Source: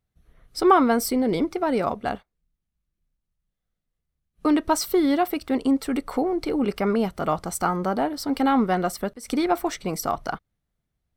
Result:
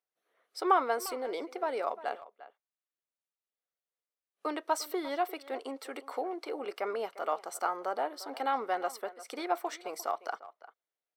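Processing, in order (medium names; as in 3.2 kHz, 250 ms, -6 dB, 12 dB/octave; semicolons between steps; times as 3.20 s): high-pass 430 Hz 24 dB/octave; treble shelf 4.2 kHz -5 dB; speakerphone echo 350 ms, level -16 dB; trim -7 dB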